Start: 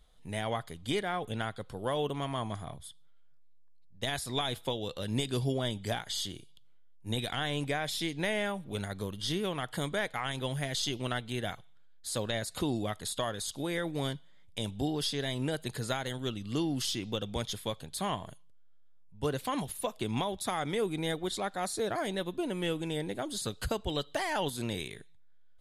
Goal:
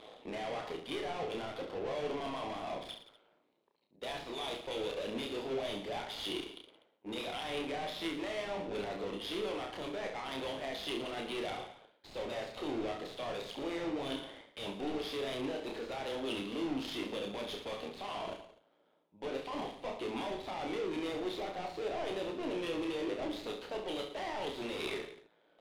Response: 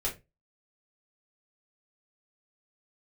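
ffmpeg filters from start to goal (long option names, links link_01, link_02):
-filter_complex "[0:a]highpass=frequency=280:width=0.5412,highpass=frequency=280:width=1.3066,areverse,acompressor=threshold=-46dB:ratio=6,areverse,tremolo=f=110:d=0.788,asplit=2[link_01][link_02];[link_02]highpass=frequency=720:poles=1,volume=35dB,asoftclip=type=tanh:threshold=-36dB[link_03];[link_01][link_03]amix=inputs=2:normalize=0,lowpass=frequency=1100:poles=1,volume=-6dB,aexciter=amount=4:drive=9.2:freq=2300,adynamicsmooth=sensitivity=5.5:basefreq=530,aecho=1:1:30|67.5|114.4|173|246.2:0.631|0.398|0.251|0.158|0.1,volume=7dB"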